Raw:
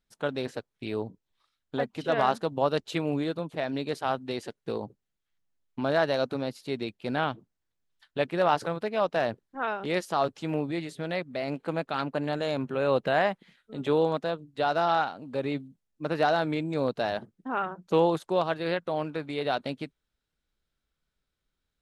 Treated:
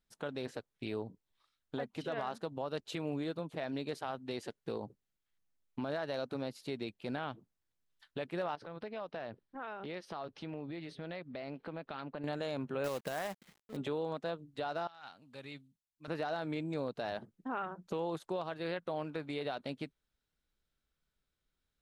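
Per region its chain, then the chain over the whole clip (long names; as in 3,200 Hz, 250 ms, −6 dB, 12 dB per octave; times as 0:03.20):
0:08.55–0:12.24: downward compressor 3 to 1, threshold −38 dBFS + Savitzky-Golay smoothing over 15 samples
0:12.84–0:13.77: log-companded quantiser 4 bits + one half of a high-frequency compander decoder only
0:14.87–0:16.08: guitar amp tone stack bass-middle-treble 5-5-5 + compressor whose output falls as the input rises −45 dBFS
whole clip: downward compressor 2 to 1, threshold −34 dBFS; brickwall limiter −24 dBFS; level −3 dB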